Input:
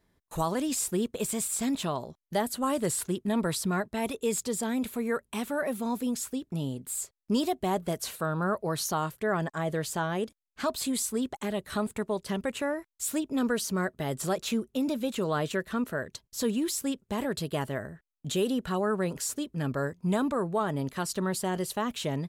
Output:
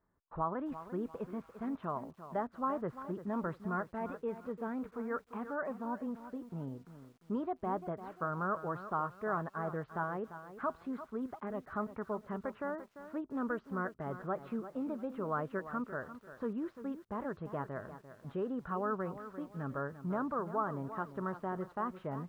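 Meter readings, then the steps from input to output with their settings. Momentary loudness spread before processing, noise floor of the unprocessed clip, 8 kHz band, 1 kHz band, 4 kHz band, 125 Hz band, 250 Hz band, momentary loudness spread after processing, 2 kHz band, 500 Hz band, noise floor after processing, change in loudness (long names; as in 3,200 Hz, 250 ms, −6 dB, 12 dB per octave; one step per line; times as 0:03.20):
5 LU, −79 dBFS, below −35 dB, −4.0 dB, below −30 dB, −9.0 dB, −9.0 dB, 7 LU, −8.0 dB, −8.0 dB, −66 dBFS, −8.5 dB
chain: transistor ladder low-pass 1,500 Hz, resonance 50%
feedback echo at a low word length 345 ms, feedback 35%, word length 10 bits, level −12 dB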